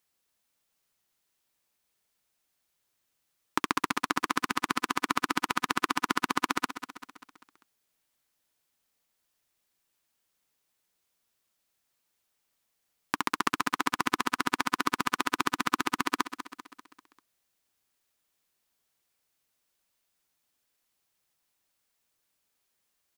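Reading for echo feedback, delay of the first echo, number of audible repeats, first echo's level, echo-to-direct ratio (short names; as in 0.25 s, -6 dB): 51%, 0.196 s, 5, -11.5 dB, -10.0 dB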